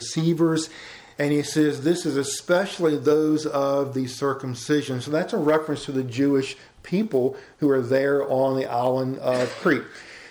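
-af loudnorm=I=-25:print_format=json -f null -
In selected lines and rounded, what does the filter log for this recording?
"input_i" : "-23.2",
"input_tp" : "-9.6",
"input_lra" : "1.1",
"input_thresh" : "-33.5",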